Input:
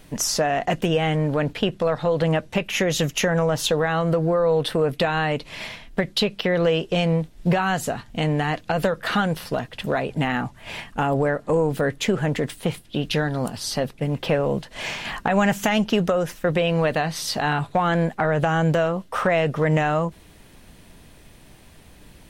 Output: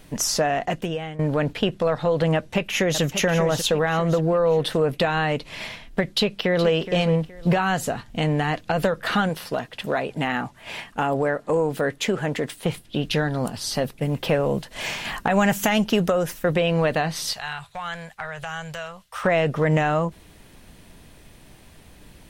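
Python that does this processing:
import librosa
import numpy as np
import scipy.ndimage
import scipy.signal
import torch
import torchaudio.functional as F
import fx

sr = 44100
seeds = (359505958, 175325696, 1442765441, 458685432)

y = fx.echo_throw(x, sr, start_s=2.35, length_s=0.67, ms=590, feedback_pct=40, wet_db=-8.5)
y = fx.echo_throw(y, sr, start_s=6.05, length_s=0.68, ms=420, feedback_pct=30, wet_db=-12.0)
y = fx.low_shelf(y, sr, hz=140.0, db=-10.5, at=(9.29, 12.66))
y = fx.high_shelf(y, sr, hz=10000.0, db=10.5, at=(13.74, 16.54))
y = fx.tone_stack(y, sr, knobs='10-0-10', at=(17.33, 19.24))
y = fx.edit(y, sr, fx.fade_out_to(start_s=0.47, length_s=0.72, floor_db=-17.0), tone=tone)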